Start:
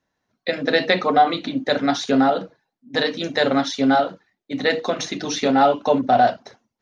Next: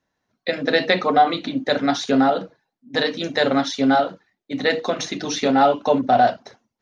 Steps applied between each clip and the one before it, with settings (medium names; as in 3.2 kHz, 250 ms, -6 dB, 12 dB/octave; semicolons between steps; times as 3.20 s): no audible change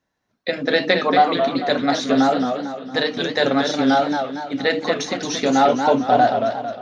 modulated delay 227 ms, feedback 46%, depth 167 cents, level -6 dB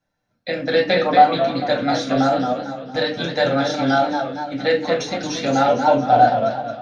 reverberation RT60 0.30 s, pre-delay 5 ms, DRR -1 dB; trim -6 dB